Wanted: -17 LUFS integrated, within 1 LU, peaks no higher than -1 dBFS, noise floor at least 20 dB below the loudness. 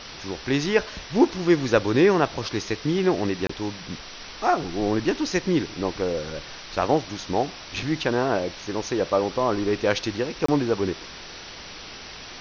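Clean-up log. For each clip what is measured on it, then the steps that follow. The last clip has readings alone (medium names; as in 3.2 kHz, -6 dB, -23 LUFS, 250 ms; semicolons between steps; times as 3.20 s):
dropouts 2; longest dropout 24 ms; noise floor -40 dBFS; noise floor target -45 dBFS; loudness -24.5 LUFS; peak level -6.0 dBFS; loudness target -17.0 LUFS
-> interpolate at 3.47/10.46 s, 24 ms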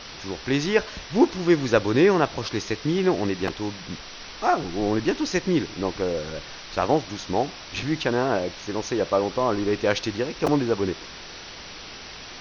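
dropouts 0; noise floor -40 dBFS; noise floor target -45 dBFS
-> noise reduction 6 dB, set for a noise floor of -40 dBFS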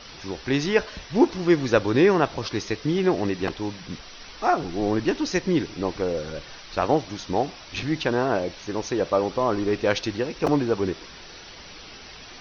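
noise floor -43 dBFS; noise floor target -45 dBFS
-> noise reduction 6 dB, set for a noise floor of -43 dBFS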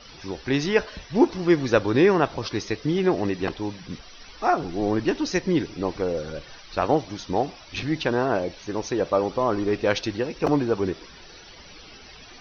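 noise floor -46 dBFS; loudness -24.5 LUFS; peak level -6.0 dBFS; loudness target -17.0 LUFS
-> trim +7.5 dB; peak limiter -1 dBFS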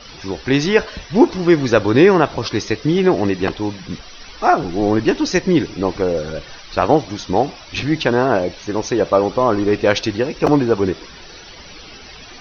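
loudness -17.5 LUFS; peak level -1.0 dBFS; noise floor -39 dBFS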